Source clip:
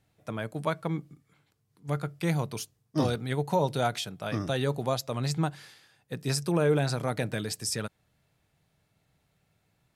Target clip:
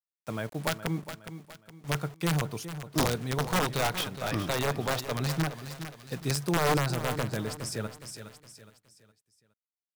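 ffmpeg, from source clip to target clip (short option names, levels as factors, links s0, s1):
-filter_complex "[0:a]asettb=1/sr,asplit=3[s0][s1][s2];[s0]atrim=end=3.414[s3];[s1]atrim=start=3.41:end=5.42,asetpts=PTS-STARTPTS,afade=t=in:d=0.004:c=qsin,afade=t=out:st=2.006:d=0.004:c=qsin,equalizer=f=2900:w=0.69:g=9[s4];[s2]atrim=start=5.416[s5];[s3][s4]acrossfade=d=0.004:c1=hsin:c2=qsin[s6];[s6][s5]acrossfade=d=0.004:c1=qsin:c2=hsin,acrusher=bits=7:mix=0:aa=0.000001,aeval=exprs='(mod(7.5*val(0)+1,2)-1)/7.5':c=same,aecho=1:1:415|830|1245|1660:0.266|0.0984|0.0364|0.0135,adynamicequalizer=threshold=0.00501:dfrequency=1800:dqfactor=0.7:tfrequency=1800:tqfactor=0.7:attack=5:release=100:ratio=0.375:range=3.5:mode=cutabove:tftype=highshelf"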